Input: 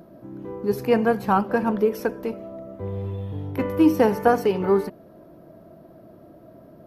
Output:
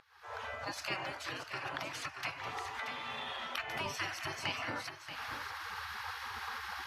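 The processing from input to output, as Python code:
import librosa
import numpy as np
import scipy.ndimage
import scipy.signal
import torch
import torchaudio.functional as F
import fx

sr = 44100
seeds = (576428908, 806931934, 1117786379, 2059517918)

y = fx.recorder_agc(x, sr, target_db=-9.5, rise_db_per_s=61.0, max_gain_db=30)
y = scipy.signal.sosfilt(scipy.signal.butter(4, 120.0, 'highpass', fs=sr, output='sos'), y)
y = fx.spec_gate(y, sr, threshold_db=-25, keep='weak')
y = fx.high_shelf(y, sr, hz=2800.0, db=9.0)
y = fx.vibrato(y, sr, rate_hz=3.7, depth_cents=5.5)
y = fx.air_absorb(y, sr, metres=110.0)
y = y + 10.0 ** (-10.0 / 20.0) * np.pad(y, (int(630 * sr / 1000.0), 0))[:len(y)]
y = fx.band_squash(y, sr, depth_pct=70, at=(1.74, 3.86))
y = y * librosa.db_to_amplitude(-3.0)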